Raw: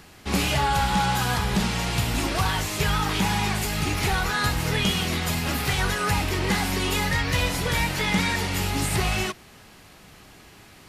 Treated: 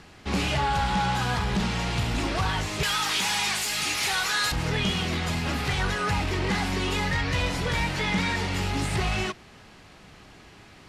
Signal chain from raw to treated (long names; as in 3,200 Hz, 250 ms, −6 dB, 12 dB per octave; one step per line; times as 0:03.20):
0:02.83–0:04.52: spectral tilt +4.5 dB per octave
soft clipping −18 dBFS, distortion −15 dB
high-frequency loss of the air 62 metres